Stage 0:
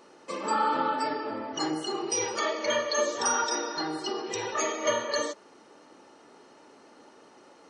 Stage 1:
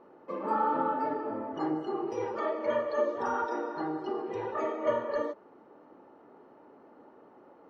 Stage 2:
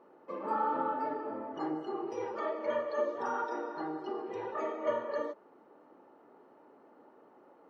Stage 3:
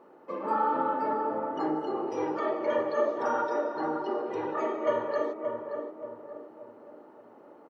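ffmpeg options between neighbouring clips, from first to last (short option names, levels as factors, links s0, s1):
-af "lowpass=1100"
-af "lowshelf=f=120:g=-11.5,volume=0.708"
-filter_complex "[0:a]asplit=2[s0][s1];[s1]adelay=576,lowpass=f=910:p=1,volume=0.631,asplit=2[s2][s3];[s3]adelay=576,lowpass=f=910:p=1,volume=0.49,asplit=2[s4][s5];[s5]adelay=576,lowpass=f=910:p=1,volume=0.49,asplit=2[s6][s7];[s7]adelay=576,lowpass=f=910:p=1,volume=0.49,asplit=2[s8][s9];[s9]adelay=576,lowpass=f=910:p=1,volume=0.49,asplit=2[s10][s11];[s11]adelay=576,lowpass=f=910:p=1,volume=0.49[s12];[s0][s2][s4][s6][s8][s10][s12]amix=inputs=7:normalize=0,volume=1.68"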